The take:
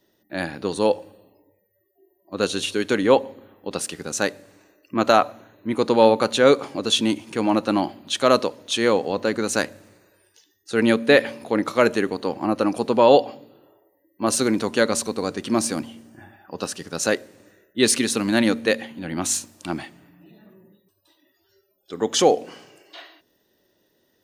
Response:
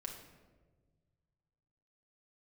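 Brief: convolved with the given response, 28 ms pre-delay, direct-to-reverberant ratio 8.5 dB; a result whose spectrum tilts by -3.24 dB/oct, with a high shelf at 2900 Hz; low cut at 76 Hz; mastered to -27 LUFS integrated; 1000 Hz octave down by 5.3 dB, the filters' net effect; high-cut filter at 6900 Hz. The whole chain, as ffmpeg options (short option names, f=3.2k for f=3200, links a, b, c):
-filter_complex "[0:a]highpass=76,lowpass=6.9k,equalizer=f=1k:t=o:g=-8,highshelf=f=2.9k:g=4.5,asplit=2[a][b];[1:a]atrim=start_sample=2205,adelay=28[c];[b][c]afir=irnorm=-1:irlink=0,volume=-6dB[d];[a][d]amix=inputs=2:normalize=0,volume=-5dB"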